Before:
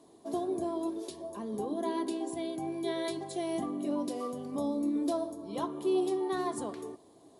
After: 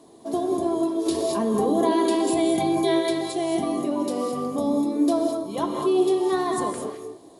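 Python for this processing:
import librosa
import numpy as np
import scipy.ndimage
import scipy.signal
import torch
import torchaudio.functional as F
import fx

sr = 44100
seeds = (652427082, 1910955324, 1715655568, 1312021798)

y = fx.rev_gated(x, sr, seeds[0], gate_ms=240, shape='rising', drr_db=2.5)
y = fx.env_flatten(y, sr, amount_pct=50, at=(1.05, 2.98), fade=0.02)
y = y * librosa.db_to_amplitude(7.5)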